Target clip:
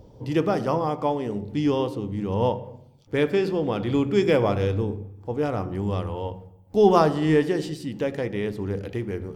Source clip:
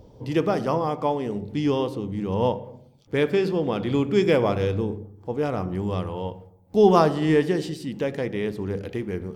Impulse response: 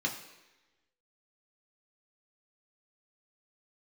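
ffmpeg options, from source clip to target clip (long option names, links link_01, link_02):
-filter_complex "[0:a]asplit=2[link_01][link_02];[link_02]asubboost=boost=12:cutoff=120[link_03];[1:a]atrim=start_sample=2205[link_04];[link_03][link_04]afir=irnorm=-1:irlink=0,volume=-21.5dB[link_05];[link_01][link_05]amix=inputs=2:normalize=0"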